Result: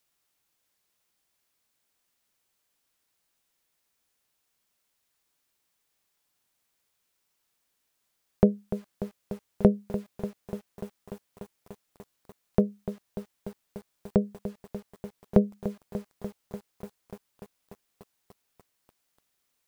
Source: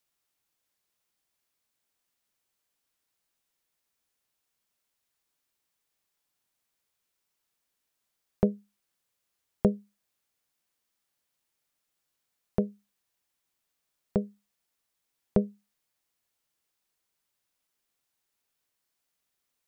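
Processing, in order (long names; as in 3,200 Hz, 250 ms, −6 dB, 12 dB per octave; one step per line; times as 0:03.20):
feedback echo at a low word length 294 ms, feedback 80%, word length 8 bits, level −12 dB
level +4.5 dB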